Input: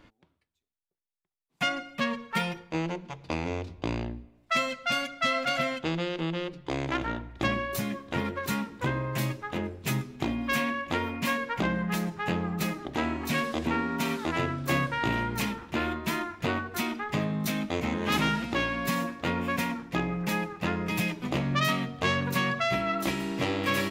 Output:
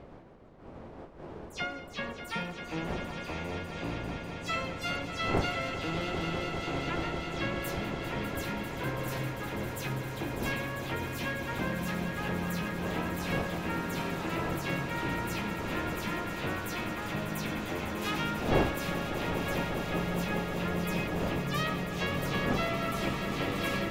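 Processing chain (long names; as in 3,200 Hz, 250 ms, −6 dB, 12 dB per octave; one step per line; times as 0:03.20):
every frequency bin delayed by itself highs early, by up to 107 ms
wind on the microphone 530 Hz −35 dBFS
echo that builds up and dies away 199 ms, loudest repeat 5, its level −10.5 dB
level −6.5 dB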